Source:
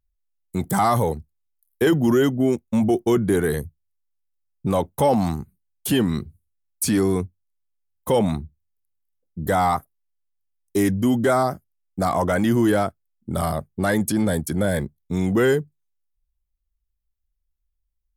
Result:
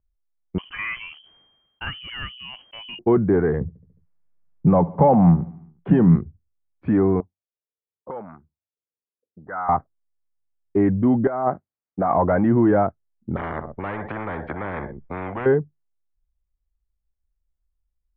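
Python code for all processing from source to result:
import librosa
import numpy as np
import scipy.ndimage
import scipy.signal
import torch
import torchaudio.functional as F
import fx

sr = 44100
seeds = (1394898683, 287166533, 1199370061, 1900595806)

y = fx.chain(x, sr, fx.freq_invert(carrier_hz=3200),
    fx.sustainer(db_per_s=39.0), at=(0.58, 2.99))
y = fx.chain(y, sr, fx.peak_eq(hz=170.0, db=14.5, octaves=0.26),
    fx.echo_feedback(ms=72, feedback_pct=58, wet_db=-21.0),
    fx.band_squash(depth_pct=40), at=(3.61, 6.16))
y = fx.chain(y, sr, fx.low_shelf(hz=370.0, db=9.0),
    fx.auto_wah(base_hz=450.0, top_hz=1400.0, q=3.9, full_db=-15.0, direction='up'), at=(7.2, 9.69))
y = fx.chain(y, sr, fx.highpass(hz=270.0, slope=6),
    fx.over_compress(threshold_db=-23.0, ratio=-0.5), at=(11.27, 12.13))
y = fx.chain(y, sr, fx.low_shelf(hz=390.0, db=8.5),
    fx.echo_feedback(ms=61, feedback_pct=26, wet_db=-19.0),
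    fx.spectral_comp(ratio=10.0), at=(13.36, 15.46))
y = scipy.signal.sosfilt(scipy.signal.bessel(8, 1200.0, 'lowpass', norm='mag', fs=sr, output='sos'), y)
y = fx.dynamic_eq(y, sr, hz=830.0, q=1.6, threshold_db=-32.0, ratio=4.0, max_db=4)
y = y * 10.0 ** (1.5 / 20.0)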